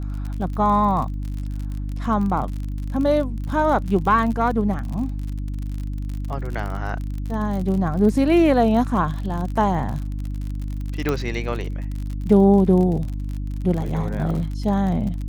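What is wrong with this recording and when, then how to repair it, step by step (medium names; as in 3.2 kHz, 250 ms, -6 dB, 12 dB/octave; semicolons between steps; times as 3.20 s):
crackle 46 per s -28 dBFS
hum 50 Hz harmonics 6 -27 dBFS
11.09 s: pop -9 dBFS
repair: de-click; de-hum 50 Hz, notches 6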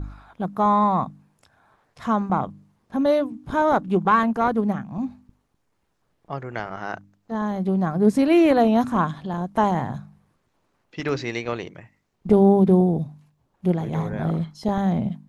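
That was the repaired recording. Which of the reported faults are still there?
11.09 s: pop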